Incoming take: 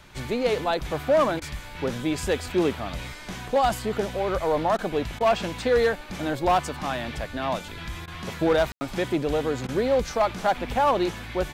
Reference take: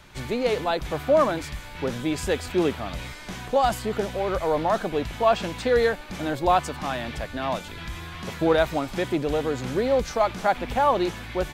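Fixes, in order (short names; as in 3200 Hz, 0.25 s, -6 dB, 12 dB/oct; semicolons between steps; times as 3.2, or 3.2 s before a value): clip repair -15 dBFS; room tone fill 8.72–8.81; interpolate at 1.4/4.77/5.19/8.06/9.67, 15 ms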